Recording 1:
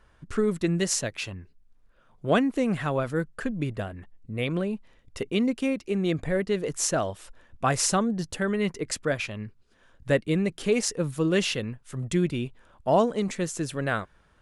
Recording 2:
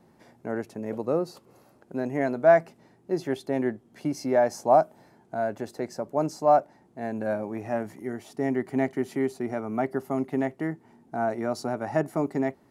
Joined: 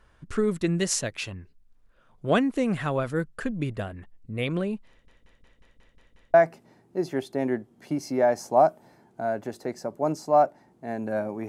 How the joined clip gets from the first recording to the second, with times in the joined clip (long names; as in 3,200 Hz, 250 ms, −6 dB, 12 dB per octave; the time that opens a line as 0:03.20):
recording 1
0:04.90: stutter in place 0.18 s, 8 plays
0:06.34: continue with recording 2 from 0:02.48